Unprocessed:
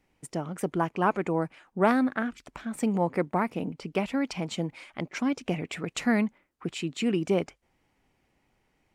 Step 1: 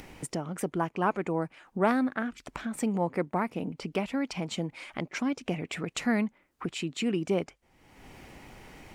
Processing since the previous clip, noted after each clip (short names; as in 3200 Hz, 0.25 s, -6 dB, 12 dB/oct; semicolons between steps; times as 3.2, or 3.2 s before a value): upward compressor, threshold -26 dBFS; gain -2.5 dB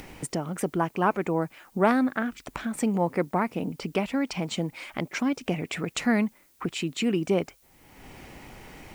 added noise blue -66 dBFS; gain +3.5 dB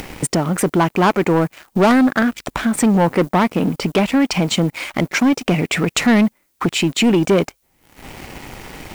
sample leveller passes 3; gain +2.5 dB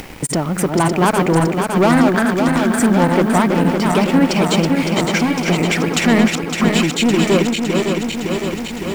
regenerating reverse delay 0.28 s, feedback 82%, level -4.5 dB; gain -1 dB